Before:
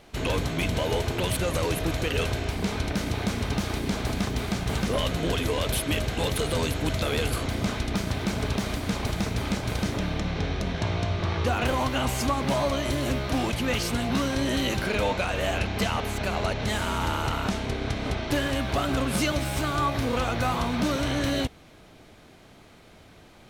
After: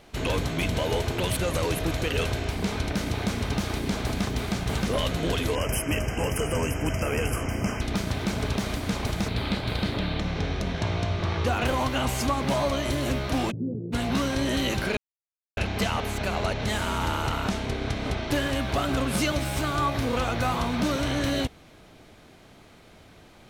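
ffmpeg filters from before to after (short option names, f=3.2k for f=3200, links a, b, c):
-filter_complex "[0:a]asettb=1/sr,asplit=3[a][b][c];[a]atrim=end=5.554[d];[b]atrim=start=5.55:end=7.81,asetpts=PTS-STARTPTS,afade=t=in:d=0.004:c=qsin,afade=t=out:st=2.256:d=0.004:c=qsin,asuperstop=centerf=3900:order=20:qfactor=2.3[e];[c]atrim=start=7.806[f];[d][e]acrossfade=d=0.004:c1=hsin:c2=qsin[g];[g][f]acrossfade=d=0.004:c1=qsin:c2=hsin,asettb=1/sr,asplit=3[h][i][j];[h]atrim=end=9.284[k];[i]atrim=start=9.28:end=10.2,asetpts=PTS-STARTPTS,afade=t=in:d=0.004:c=qsin,afade=t=out:st=0.916:d=0.004:c=qsin,highshelf=f=5k:t=q:w=3:g=-6[l];[j]atrim=start=10.196[m];[k][l]acrossfade=d=0.004:c1=hsin:c2=qsin[n];[n][m]acrossfade=d=0.004:c1=qsin:c2=hsin,asplit=3[o][p][q];[o]afade=t=out:st=13.5:d=0.02[r];[p]asuperpass=centerf=210:order=8:qfactor=0.68,afade=t=in:st=13.5:d=0.02,afade=t=out:st=13.92:d=0.02[s];[q]afade=t=in:st=13.92:d=0.02[t];[r][s][t]amix=inputs=3:normalize=0,asplit=3[u][v][w];[u]atrim=end=14.97,asetpts=PTS-STARTPTS,afade=t=out:st=14.966:d=0.004:c=hsin[x];[v]atrim=start=14.97:end=15.57,asetpts=PTS-STARTPTS,volume=0[y];[w]atrim=start=15.57,asetpts=PTS-STARTPTS,afade=t=in:d=0.004:c=hsin[z];[x][y][z]concat=n=3:v=0:a=1"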